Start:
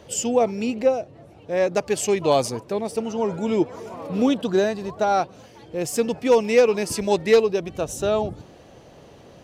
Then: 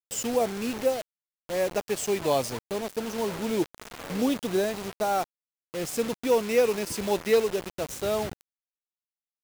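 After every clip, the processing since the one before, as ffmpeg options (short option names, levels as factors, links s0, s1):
-af "acrusher=bits=4:mix=0:aa=0.000001,volume=0.501"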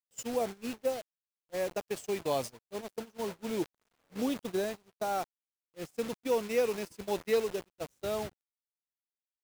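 -af "agate=range=0.0398:threshold=0.0316:ratio=16:detection=peak,volume=0.473"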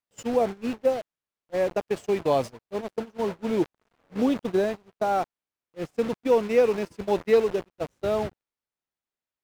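-af "lowpass=f=1800:p=1,volume=2.82"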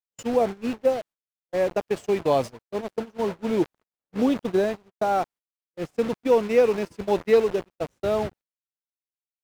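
-af "agate=range=0.0178:threshold=0.00501:ratio=16:detection=peak,volume=1.19"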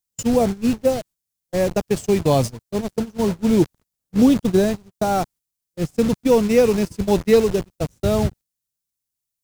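-af "bass=f=250:g=15,treble=f=4000:g=13,volume=1.19"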